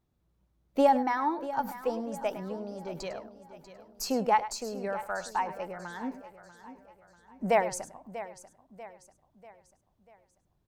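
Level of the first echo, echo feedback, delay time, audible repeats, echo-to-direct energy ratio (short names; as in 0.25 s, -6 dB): -14.0 dB, no steady repeat, 0.102 s, 5, -10.5 dB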